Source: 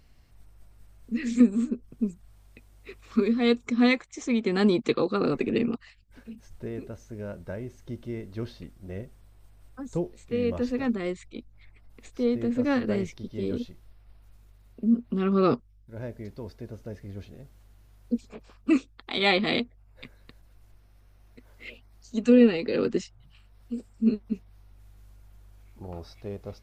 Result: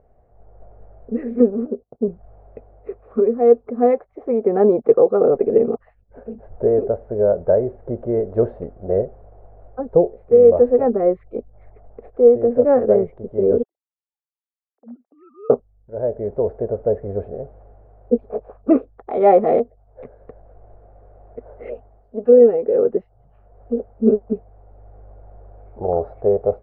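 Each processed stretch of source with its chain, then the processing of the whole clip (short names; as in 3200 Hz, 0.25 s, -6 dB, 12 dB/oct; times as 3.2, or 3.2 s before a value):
1.66–2.08 HPF 180 Hz 6 dB/oct + bell 1900 Hz -10.5 dB 0.89 oct + gate -55 dBFS, range -19 dB
13.63–15.5 sine-wave speech + gate -44 dBFS, range -17 dB + differentiator
whole clip: LPF 1400 Hz 24 dB/oct; band shelf 560 Hz +15.5 dB 1.2 oct; AGC gain up to 10 dB; gain -1 dB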